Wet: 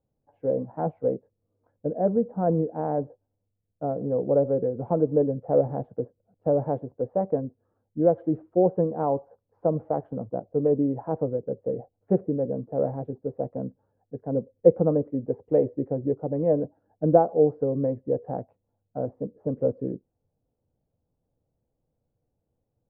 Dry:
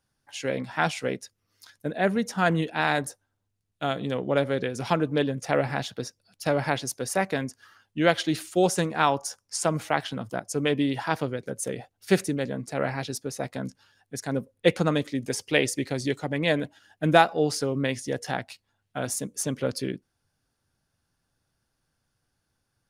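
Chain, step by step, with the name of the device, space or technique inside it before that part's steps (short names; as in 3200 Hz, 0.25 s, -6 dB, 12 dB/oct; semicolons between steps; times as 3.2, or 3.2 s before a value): notch 390 Hz, Q 12; 7.39–8.18 bell 1400 Hz -11.5 dB -> -1.5 dB 2.5 oct; under water (LPF 730 Hz 24 dB/oct; bell 480 Hz +7 dB 0.52 oct)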